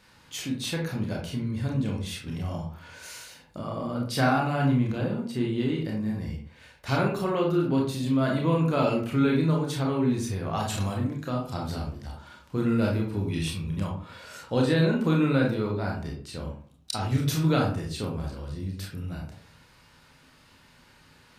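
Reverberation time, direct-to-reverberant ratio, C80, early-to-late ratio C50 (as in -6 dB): 0.50 s, -1.5 dB, 10.5 dB, 4.5 dB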